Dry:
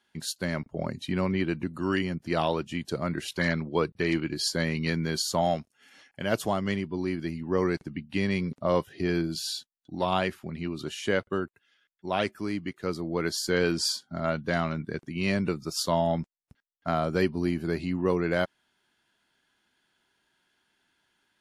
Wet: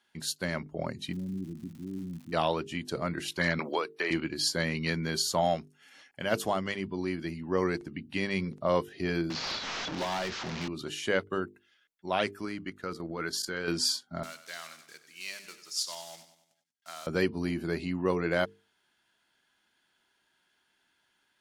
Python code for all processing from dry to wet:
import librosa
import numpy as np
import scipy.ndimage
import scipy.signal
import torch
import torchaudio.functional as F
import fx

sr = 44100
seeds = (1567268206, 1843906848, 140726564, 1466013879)

y = fx.law_mismatch(x, sr, coded='mu', at=(1.11, 2.32), fade=0.02)
y = fx.ladder_lowpass(y, sr, hz=290.0, resonance_pct=35, at=(1.11, 2.32), fade=0.02)
y = fx.dmg_crackle(y, sr, seeds[0], per_s=240.0, level_db=-44.0, at=(1.11, 2.32), fade=0.02)
y = fx.chain(y, sr, fx.highpass(hz=520.0, slope=12),
    fx.band_squash(depth_pct=100), at=(3.59, 4.11))
y = fx.chain(y, sr, fx.delta_mod(bps=32000, step_db=-33.0),
    fx.clip_hard(threshold_db=-27.0),
    fx.band_squash(depth_pct=70), at=(9.3, 10.68))
y = fx.chain(y, sr, fx.level_steps(step_db=11),
    fx.peak_eq(hz=1400.0, db=6.5, octaves=0.48), at=(12.45, 13.68))
y = fx.chain(y, sr, fx.block_float(bits=5),
    fx.bandpass_q(hz=6300.0, q=0.9),
    fx.echo_feedback(ms=96, feedback_pct=50, wet_db=-12.0), at=(14.23, 17.07))
y = fx.low_shelf(y, sr, hz=390.0, db=-4.0)
y = fx.hum_notches(y, sr, base_hz=50, count=9)